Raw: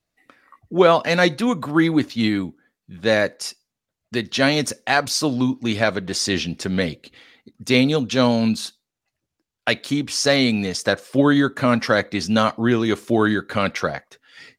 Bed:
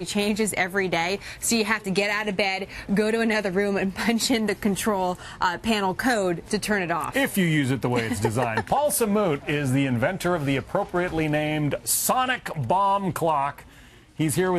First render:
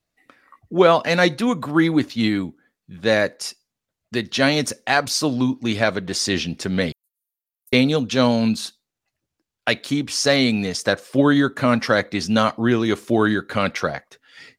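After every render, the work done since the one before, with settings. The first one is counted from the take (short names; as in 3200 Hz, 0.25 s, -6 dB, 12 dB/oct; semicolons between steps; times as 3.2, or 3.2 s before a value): 6.92–7.73 inverse Chebyshev high-pass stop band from 2800 Hz, stop band 80 dB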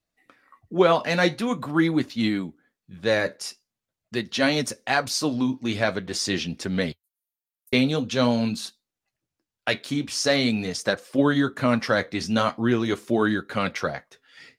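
flange 0.45 Hz, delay 3.3 ms, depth 9.8 ms, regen -61%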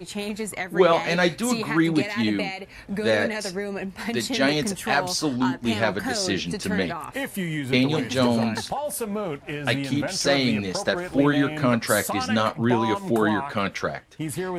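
add bed -6.5 dB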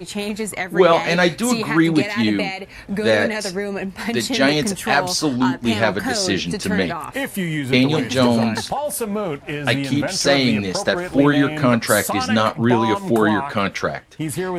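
gain +5 dB; limiter -2 dBFS, peak gain reduction 1.5 dB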